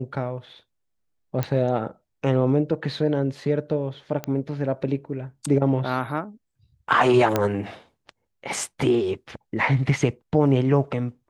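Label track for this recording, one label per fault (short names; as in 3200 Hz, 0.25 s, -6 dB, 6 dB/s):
1.430000	1.430000	pop -11 dBFS
4.240000	4.240000	pop -14 dBFS
7.360000	7.360000	pop -7 dBFS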